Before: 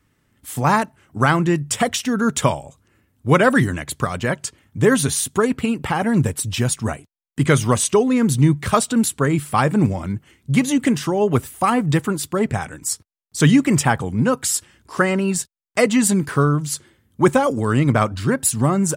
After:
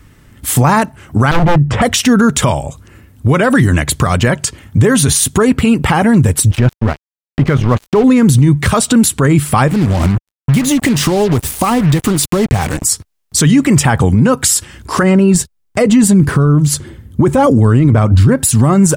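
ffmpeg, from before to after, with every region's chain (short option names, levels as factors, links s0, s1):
-filter_complex "[0:a]asettb=1/sr,asplit=3[s0][s1][s2];[s0]atrim=end=1.314[s3];[s1]atrim=start=1.31:end=1.82,asetpts=PTS-STARTPTS,afade=t=in:d=0.004:c=qsin,afade=t=out:st=0.506:d=0.004:c=qsin,lowpass=1300,acompressor=mode=upward:threshold=0.0562:ratio=2.5:attack=3.2:release=140:knee=2.83:detection=peak,aeval=exprs='0.112*(abs(mod(val(0)/0.112+3,4)-2)-1)':c=same[s4];[s2]atrim=start=1.816[s5];[s3][s4]acrossfade=d=0.004:c1=hsin:c2=qsin[s6];[s6][s5]acrossfade=d=0.004:c1=qsin:c2=hsin,asettb=1/sr,asplit=3[s7][s8][s9];[s7]atrim=end=6.514[s10];[s8]atrim=start=6.51:end=8.04,asetpts=PTS-STARTPTS,afade=t=in:d=0.004:c=qsin,afade=t=out:st=1.526:d=0.004:c=qsin,lowpass=2300,aeval=exprs='sgn(val(0))*max(abs(val(0))-0.0316,0)':c=same[s11];[s9]atrim=start=8.036[s12];[s10][s11]acrossfade=d=0.004:c1=hsin:c2=qsin[s13];[s13][s12]acrossfade=d=0.004:c1=qsin:c2=hsin,asettb=1/sr,asplit=3[s14][s15][s16];[s14]atrim=end=9.684[s17];[s15]atrim=start=9.68:end=12.83,asetpts=PTS-STARTPTS,afade=t=in:d=0.004:c=qsin,afade=t=out:st=3.146:d=0.004:c=qsin,equalizer=f=1500:t=o:w=0.45:g=-6.5,acompressor=threshold=0.0562:ratio=5:attack=3.2:release=140:knee=1:detection=peak,acrusher=bits=5:mix=0:aa=0.5[s18];[s16]atrim=start=12.826[s19];[s17][s18]acrossfade=d=0.004:c1=hsin:c2=qsin[s20];[s20][s19]acrossfade=d=0.004:c1=qsin:c2=hsin,asettb=1/sr,asplit=3[s21][s22][s23];[s21]atrim=end=15.034[s24];[s22]atrim=start=15.03:end=18.36,asetpts=PTS-STARTPTS,afade=t=in:d=0.004:c=qsin,afade=t=out:st=3.326:d=0.004:c=qsin,tiltshelf=f=670:g=4.5,aphaser=in_gain=1:out_gain=1:delay=3.3:decay=0.21:speed=1.6:type=triangular[s25];[s23]atrim=start=18.356[s26];[s24][s25]acrossfade=d=0.004:c1=hsin:c2=qsin[s27];[s27][s26]acrossfade=d=0.004:c1=qsin:c2=hsin,lowshelf=f=88:g=11.5,acompressor=threshold=0.0355:ratio=1.5,alimiter=level_in=7.94:limit=0.891:release=50:level=0:latency=1,volume=0.891"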